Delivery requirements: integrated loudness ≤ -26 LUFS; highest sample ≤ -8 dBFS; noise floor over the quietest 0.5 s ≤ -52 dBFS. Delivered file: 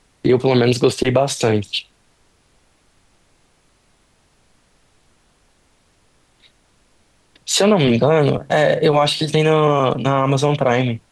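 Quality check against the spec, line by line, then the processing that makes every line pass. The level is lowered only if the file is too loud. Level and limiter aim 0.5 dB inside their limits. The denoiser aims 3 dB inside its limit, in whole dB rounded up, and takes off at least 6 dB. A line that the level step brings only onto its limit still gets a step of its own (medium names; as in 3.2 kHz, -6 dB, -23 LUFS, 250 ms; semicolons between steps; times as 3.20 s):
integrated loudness -16.5 LUFS: fail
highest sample -4.5 dBFS: fail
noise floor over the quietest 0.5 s -58 dBFS: pass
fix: trim -10 dB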